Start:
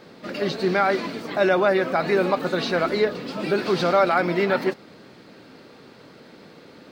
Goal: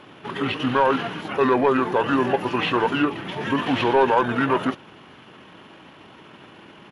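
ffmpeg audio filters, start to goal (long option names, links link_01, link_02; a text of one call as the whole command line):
ffmpeg -i in.wav -filter_complex "[0:a]asetrate=30296,aresample=44100,atempo=1.45565,asplit=2[link_01][link_02];[link_02]highpass=frequency=720:poles=1,volume=11dB,asoftclip=type=tanh:threshold=-7dB[link_03];[link_01][link_03]amix=inputs=2:normalize=0,lowpass=frequency=4800:poles=1,volume=-6dB" out.wav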